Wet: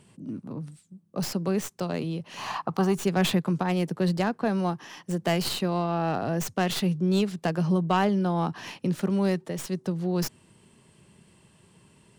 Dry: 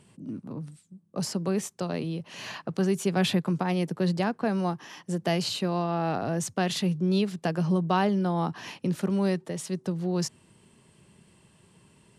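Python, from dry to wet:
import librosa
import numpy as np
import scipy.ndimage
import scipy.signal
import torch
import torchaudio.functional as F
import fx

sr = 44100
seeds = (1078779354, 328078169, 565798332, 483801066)

y = fx.tracing_dist(x, sr, depth_ms=0.079)
y = fx.band_shelf(y, sr, hz=970.0, db=11.5, octaves=1.0, at=(2.37, 2.96))
y = F.gain(torch.from_numpy(y), 1.0).numpy()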